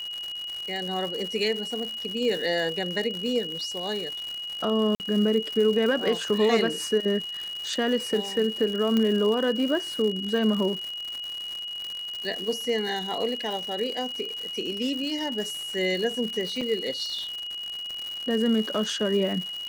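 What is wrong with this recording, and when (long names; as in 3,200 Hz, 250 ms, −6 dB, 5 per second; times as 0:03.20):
surface crackle 200 per second −31 dBFS
whistle 2,900 Hz −32 dBFS
0:04.95–0:05.00: drop-out 49 ms
0:08.97: click −13 dBFS
0:16.61: drop-out 4.5 ms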